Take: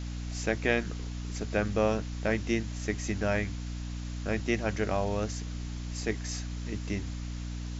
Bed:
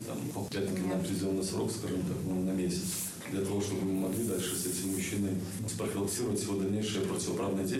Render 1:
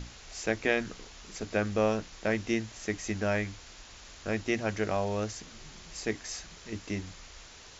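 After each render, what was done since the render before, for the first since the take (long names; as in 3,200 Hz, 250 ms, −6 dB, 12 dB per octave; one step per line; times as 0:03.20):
mains-hum notches 60/120/180/240/300 Hz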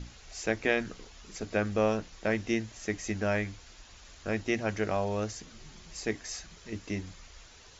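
broadband denoise 6 dB, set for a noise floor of −51 dBFS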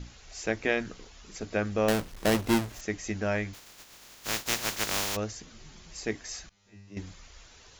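0:01.88–0:02.81: each half-wave held at its own peak
0:03.53–0:05.15: compressing power law on the bin magnitudes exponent 0.17
0:06.49–0:06.97: tuned comb filter 100 Hz, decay 0.8 s, mix 100%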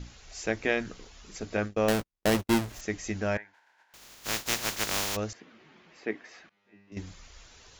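0:01.57–0:02.51: noise gate −33 dBFS, range −47 dB
0:03.37–0:03.94: pair of resonant band-passes 1,200 Hz, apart 0.75 octaves
0:05.33–0:06.92: Chebyshev band-pass filter 260–2,300 Hz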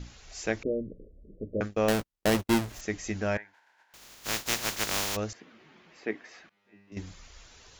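0:00.63–0:01.61: Butterworth low-pass 600 Hz 96 dB per octave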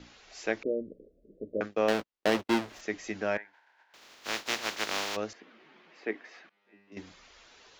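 three-way crossover with the lows and the highs turned down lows −17 dB, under 220 Hz, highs −15 dB, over 5,400 Hz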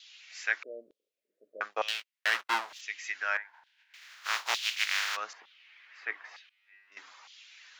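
auto-filter high-pass saw down 1.1 Hz 830–3,500 Hz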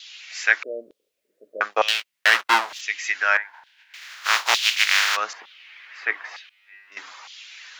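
level +11.5 dB
brickwall limiter −2 dBFS, peak gain reduction 2 dB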